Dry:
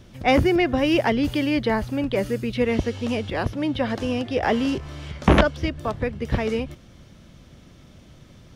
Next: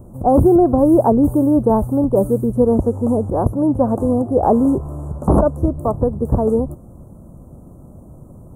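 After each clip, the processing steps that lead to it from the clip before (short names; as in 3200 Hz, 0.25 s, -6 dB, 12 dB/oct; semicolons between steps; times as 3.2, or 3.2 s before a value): inverse Chebyshev band-stop 1900–5100 Hz, stop band 50 dB; maximiser +11.5 dB; gain -3 dB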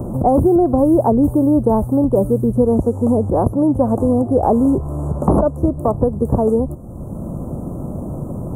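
bell 1600 Hz -3.5 dB 0.84 oct; three-band squash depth 70%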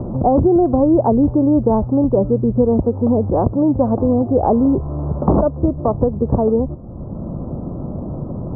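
Gaussian blur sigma 3.3 samples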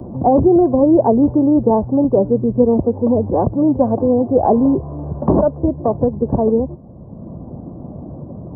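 bin magnitudes rounded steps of 15 dB; notch comb 1300 Hz; three-band expander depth 40%; gain +2 dB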